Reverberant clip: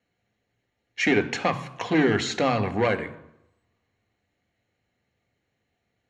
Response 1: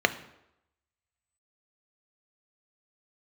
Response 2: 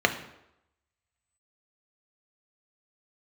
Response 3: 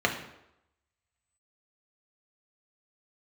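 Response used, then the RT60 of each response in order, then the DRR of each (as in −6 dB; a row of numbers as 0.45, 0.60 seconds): 1; 0.85, 0.85, 0.85 seconds; 9.5, 5.0, 1.0 decibels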